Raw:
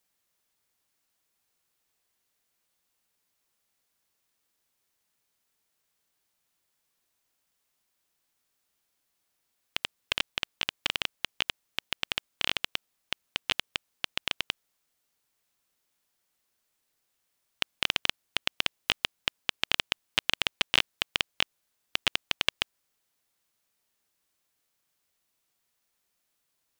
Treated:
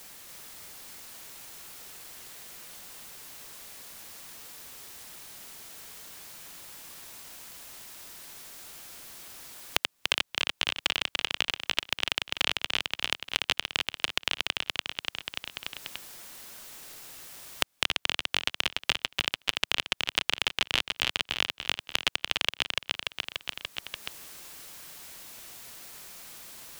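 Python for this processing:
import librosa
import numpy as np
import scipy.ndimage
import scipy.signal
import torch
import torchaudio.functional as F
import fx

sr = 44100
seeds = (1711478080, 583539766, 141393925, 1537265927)

p1 = x + fx.echo_feedback(x, sr, ms=291, feedback_pct=37, wet_db=-4.0, dry=0)
y = fx.band_squash(p1, sr, depth_pct=100)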